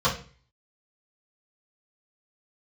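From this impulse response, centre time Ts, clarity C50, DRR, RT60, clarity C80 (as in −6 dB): 21 ms, 9.5 dB, −10.0 dB, 0.40 s, 15.0 dB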